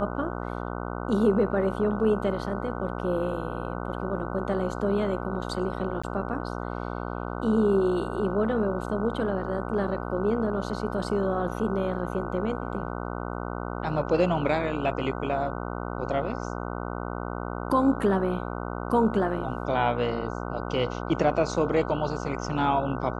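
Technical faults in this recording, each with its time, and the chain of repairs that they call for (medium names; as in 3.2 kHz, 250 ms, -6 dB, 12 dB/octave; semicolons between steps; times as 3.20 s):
buzz 60 Hz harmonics 25 -33 dBFS
6.02–6.04 s: dropout 15 ms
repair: de-hum 60 Hz, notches 25; interpolate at 6.02 s, 15 ms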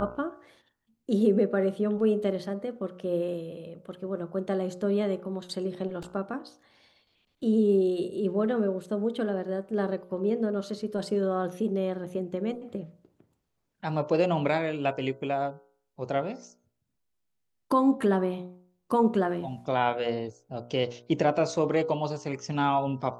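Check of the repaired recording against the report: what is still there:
nothing left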